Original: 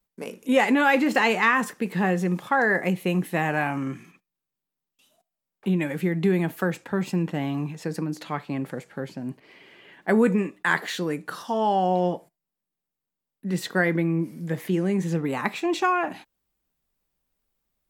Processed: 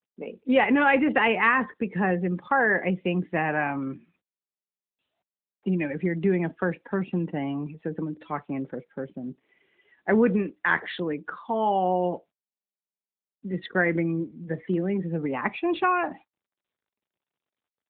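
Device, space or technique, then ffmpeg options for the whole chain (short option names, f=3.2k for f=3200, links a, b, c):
mobile call with aggressive noise cancelling: -af "highpass=170,afftdn=nr=15:nf=-37" -ar 8000 -c:a libopencore_amrnb -b:a 12200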